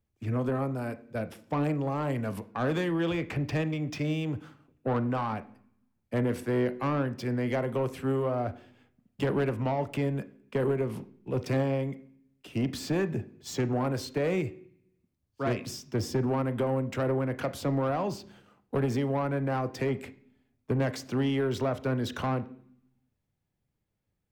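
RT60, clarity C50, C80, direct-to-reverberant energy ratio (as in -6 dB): 0.60 s, 17.5 dB, 20.5 dB, 12.0 dB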